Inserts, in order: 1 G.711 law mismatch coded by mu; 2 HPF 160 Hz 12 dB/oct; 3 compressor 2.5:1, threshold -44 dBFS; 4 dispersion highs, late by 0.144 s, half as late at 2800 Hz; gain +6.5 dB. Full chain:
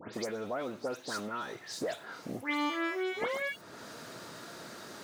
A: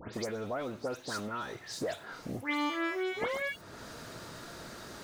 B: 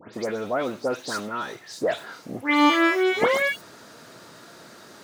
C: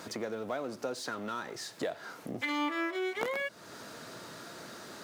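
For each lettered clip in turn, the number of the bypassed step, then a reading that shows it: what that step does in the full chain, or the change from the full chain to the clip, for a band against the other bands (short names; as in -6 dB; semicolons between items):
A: 2, 125 Hz band +5.0 dB; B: 3, mean gain reduction 6.0 dB; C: 4, crest factor change +4.5 dB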